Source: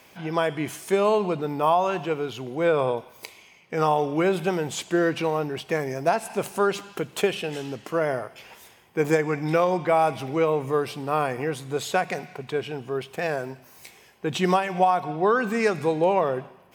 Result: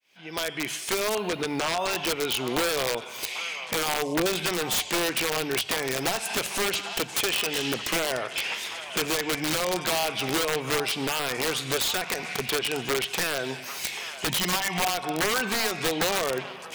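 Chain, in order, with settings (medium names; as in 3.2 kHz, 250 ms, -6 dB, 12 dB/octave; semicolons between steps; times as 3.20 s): fade-in on the opening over 2.73 s; frequency weighting D; 4.04–4.27 s: time-frequency box 1.2–9.9 kHz -29 dB; 8.19–9.08 s: treble shelf 8.3 kHz -8.5 dB; 14.27–14.88 s: comb 1 ms, depth 77%; in parallel at +1 dB: peak limiter -12.5 dBFS, peak gain reduction 9.5 dB; on the sum: compression 6:1, threshold -27 dBFS, peak gain reduction 16.5 dB; integer overflow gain 22 dB; hum notches 50/100/150 Hz; on a send: repeats whose band climbs or falls 792 ms, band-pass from 1 kHz, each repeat 1.4 oct, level -8 dB; 1.15–1.91 s: on the sum: decimation joined by straight lines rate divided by 3×; trim +3.5 dB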